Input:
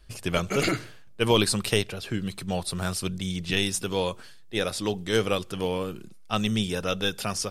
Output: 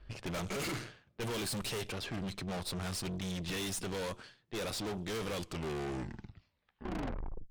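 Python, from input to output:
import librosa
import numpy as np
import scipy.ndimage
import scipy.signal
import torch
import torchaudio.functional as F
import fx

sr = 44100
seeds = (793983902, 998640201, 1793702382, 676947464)

y = fx.tape_stop_end(x, sr, length_s=2.2)
y = fx.env_lowpass(y, sr, base_hz=2400.0, full_db=-21.5)
y = fx.tube_stage(y, sr, drive_db=38.0, bias=0.55)
y = F.gain(torch.from_numpy(y), 2.5).numpy()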